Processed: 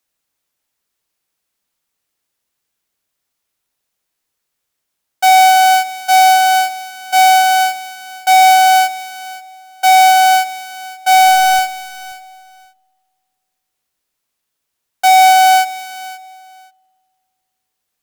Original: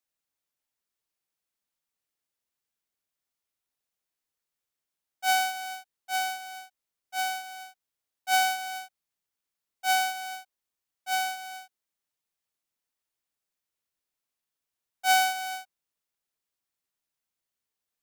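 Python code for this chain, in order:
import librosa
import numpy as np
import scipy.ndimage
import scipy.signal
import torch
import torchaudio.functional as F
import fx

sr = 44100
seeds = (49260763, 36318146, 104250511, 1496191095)

p1 = fx.delta_hold(x, sr, step_db=-49.0, at=(11.14, 11.59))
p2 = fx.fold_sine(p1, sr, drive_db=9, ceiling_db=-13.5)
p3 = p1 + (p2 * librosa.db_to_amplitude(-6.0))
p4 = fx.leveller(p3, sr, passes=3)
p5 = fx.echo_feedback(p4, sr, ms=531, feedback_pct=17, wet_db=-16.5)
p6 = fx.rev_spring(p5, sr, rt60_s=2.0, pass_ms=(49,), chirp_ms=65, drr_db=20.0)
y = p6 * librosa.db_to_amplitude(8.0)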